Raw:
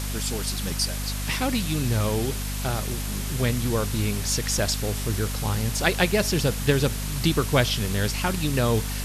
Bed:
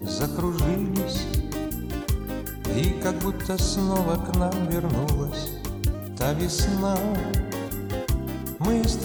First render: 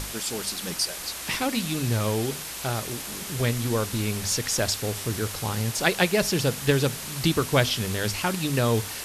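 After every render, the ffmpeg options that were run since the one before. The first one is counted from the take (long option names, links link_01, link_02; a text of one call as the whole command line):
ffmpeg -i in.wav -af "bandreject=frequency=50:width_type=h:width=6,bandreject=frequency=100:width_type=h:width=6,bandreject=frequency=150:width_type=h:width=6,bandreject=frequency=200:width_type=h:width=6,bandreject=frequency=250:width_type=h:width=6" out.wav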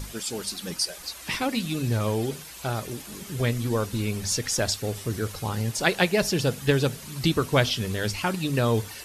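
ffmpeg -i in.wav -af "afftdn=noise_reduction=10:noise_floor=-36" out.wav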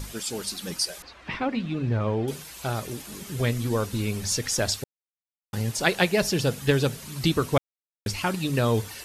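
ffmpeg -i in.wav -filter_complex "[0:a]asettb=1/sr,asplit=3[link_01][link_02][link_03];[link_01]atrim=end=1.024[link_04];[link_02]atrim=start=1.02:end=2.28,asetpts=PTS-STARTPTS,afade=type=in:duration=0.004:curve=qsin,afade=type=out:start_time=1.256:duration=0.004:curve=qsin,lowpass=2200[link_05];[link_03]atrim=start=2.276[link_06];[link_04][link_05]acrossfade=duration=0.004:curve1=hsin:curve2=qsin[link_07];[link_07][link_06]acrossfade=duration=0.004:curve1=qsin:curve2=hsin,asplit=5[link_08][link_09][link_10][link_11][link_12];[link_08]atrim=end=4.84,asetpts=PTS-STARTPTS,afade=type=out:start_time=4.836:duration=0.004:curve=hsin[link_13];[link_09]atrim=start=4.84:end=5.53,asetpts=PTS-STARTPTS,volume=0[link_14];[link_10]atrim=start=5.53:end=7.58,asetpts=PTS-STARTPTS,afade=type=in:duration=0.004:curve=hsin,afade=type=out:start_time=2.046:duration=0.004:curve=hsin[link_15];[link_11]atrim=start=7.58:end=8.06,asetpts=PTS-STARTPTS,volume=0[link_16];[link_12]atrim=start=8.06,asetpts=PTS-STARTPTS,afade=type=in:duration=0.004:curve=hsin[link_17];[link_13][link_14][link_15][link_16][link_17]concat=n=5:v=0:a=1" out.wav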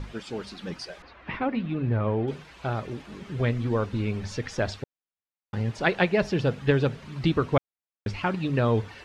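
ffmpeg -i in.wav -af "lowpass=2500" out.wav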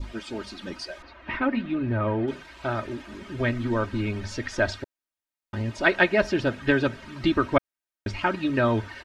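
ffmpeg -i in.wav -af "adynamicequalizer=threshold=0.00708:dfrequency=1600:dqfactor=1.9:tfrequency=1600:tqfactor=1.9:attack=5:release=100:ratio=0.375:range=3:mode=boostabove:tftype=bell,aecho=1:1:3.2:0.68" out.wav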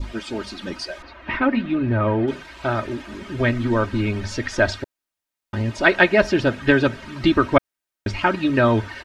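ffmpeg -i in.wav -af "volume=5.5dB,alimiter=limit=-1dB:level=0:latency=1" out.wav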